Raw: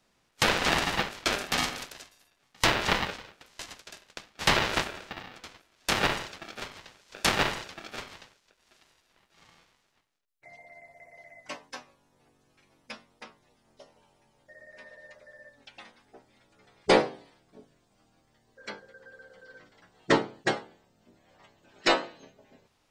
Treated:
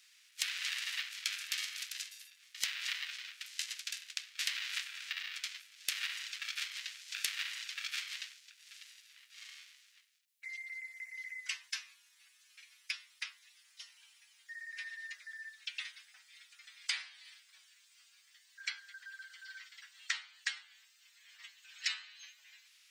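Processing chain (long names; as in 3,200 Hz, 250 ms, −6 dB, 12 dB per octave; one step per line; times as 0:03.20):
inverse Chebyshev high-pass filter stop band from 430 Hz, stop band 70 dB
downward compressor 8 to 1, threshold −45 dBFS, peak gain reduction 23.5 dB
level +10.5 dB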